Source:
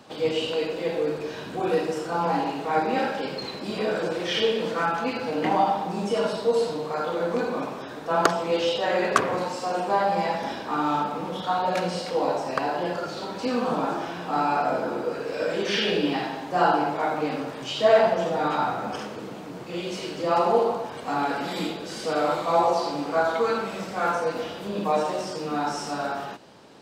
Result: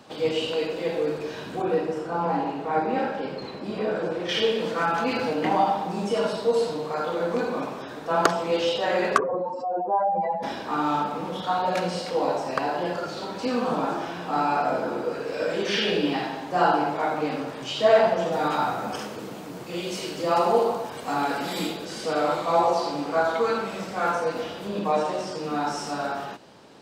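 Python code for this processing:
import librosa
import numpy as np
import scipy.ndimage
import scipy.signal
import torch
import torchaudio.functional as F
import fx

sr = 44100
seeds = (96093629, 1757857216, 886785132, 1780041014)

y = fx.high_shelf(x, sr, hz=2700.0, db=-11.5, at=(1.62, 4.29))
y = fx.env_flatten(y, sr, amount_pct=50, at=(4.81, 5.33))
y = fx.spec_expand(y, sr, power=2.3, at=(9.16, 10.42), fade=0.02)
y = fx.high_shelf(y, sr, hz=7800.0, db=11.0, at=(18.32, 21.85))
y = fx.high_shelf(y, sr, hz=9700.0, db=-7.5, at=(24.79, 25.44))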